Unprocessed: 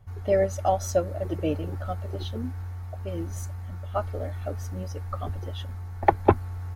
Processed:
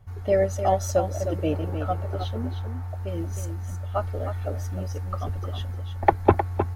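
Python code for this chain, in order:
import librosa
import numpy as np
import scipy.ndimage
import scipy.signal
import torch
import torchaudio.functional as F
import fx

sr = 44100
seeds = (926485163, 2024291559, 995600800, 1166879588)

y = fx.curve_eq(x, sr, hz=(380.0, 680.0, 4300.0), db=(0, 6, -2), at=(1.52, 2.88))
y = y + 10.0 ** (-8.5 / 20.0) * np.pad(y, (int(310 * sr / 1000.0), 0))[:len(y)]
y = y * librosa.db_to_amplitude(1.0)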